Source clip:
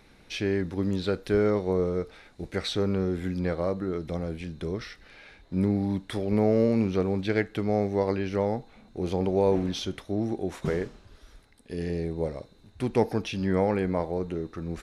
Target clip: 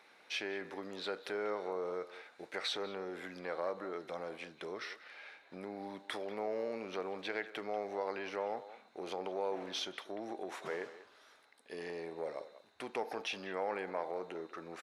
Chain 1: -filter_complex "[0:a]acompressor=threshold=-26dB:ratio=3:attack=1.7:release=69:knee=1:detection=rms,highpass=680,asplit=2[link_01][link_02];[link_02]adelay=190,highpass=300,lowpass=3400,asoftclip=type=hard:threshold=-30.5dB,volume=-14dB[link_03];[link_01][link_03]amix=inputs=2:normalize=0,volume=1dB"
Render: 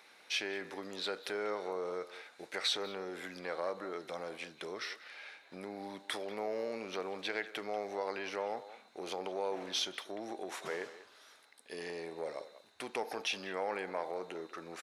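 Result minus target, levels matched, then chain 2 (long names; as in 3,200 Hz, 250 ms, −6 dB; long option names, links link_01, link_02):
8,000 Hz band +5.5 dB
-filter_complex "[0:a]acompressor=threshold=-26dB:ratio=3:attack=1.7:release=69:knee=1:detection=rms,highpass=680,highshelf=frequency=3400:gain=-9,asplit=2[link_01][link_02];[link_02]adelay=190,highpass=300,lowpass=3400,asoftclip=type=hard:threshold=-30.5dB,volume=-14dB[link_03];[link_01][link_03]amix=inputs=2:normalize=0,volume=1dB"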